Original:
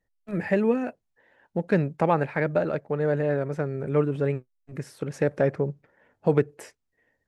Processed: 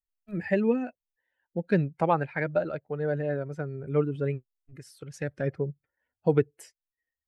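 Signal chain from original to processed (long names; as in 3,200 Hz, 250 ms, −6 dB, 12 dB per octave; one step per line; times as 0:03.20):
spectral dynamics exaggerated over time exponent 1.5
0:04.76–0:05.46: parametric band 140 Hz → 640 Hz −8.5 dB 1.6 octaves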